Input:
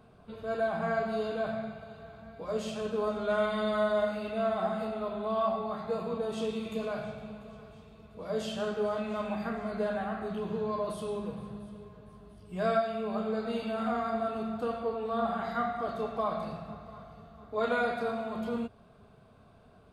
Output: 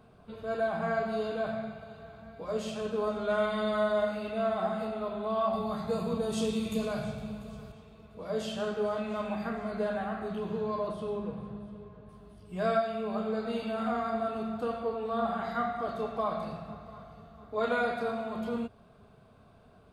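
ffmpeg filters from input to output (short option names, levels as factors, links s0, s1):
-filter_complex "[0:a]asettb=1/sr,asplit=3[s0][s1][s2];[s0]atrim=end=5.534[s3];[s1]atrim=start=5.53:end=7.72,asetpts=PTS-STARTPTS,afade=t=in:d=0.004:c=qsin,afade=t=out:st=2.186:d=0.004:c=qsin,bass=f=250:g=8,treble=f=4000:g=11[s4];[s2]atrim=start=7.716[s5];[s3][s4]acrossfade=d=0.004:c1=hsin:c2=qsin[s6];[s6][s5]acrossfade=d=0.004:c1=qsin:c2=hsin,asettb=1/sr,asplit=3[s7][s8][s9];[s7]atrim=end=10.884[s10];[s8]atrim=start=10.88:end=12.09,asetpts=PTS-STARTPTS,afade=t=in:d=0.004:c=qsin,afade=t=out:st=1.206:d=0.004:c=qsin,aemphasis=mode=reproduction:type=75fm[s11];[s9]atrim=start=12.086[s12];[s10][s11]acrossfade=d=0.004:c1=hsin:c2=qsin[s13];[s13][s12]acrossfade=d=0.004:c1=qsin:c2=hsin"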